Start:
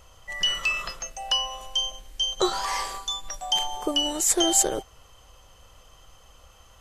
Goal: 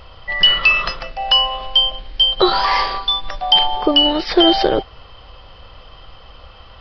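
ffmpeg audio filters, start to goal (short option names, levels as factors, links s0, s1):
-af "aresample=11025,aresample=44100,alimiter=level_in=4.73:limit=0.891:release=50:level=0:latency=1,volume=0.891"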